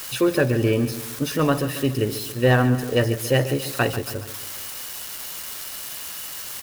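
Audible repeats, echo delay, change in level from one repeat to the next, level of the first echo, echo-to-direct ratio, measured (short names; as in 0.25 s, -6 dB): 3, 0.14 s, -5.5 dB, -13.0 dB, -11.5 dB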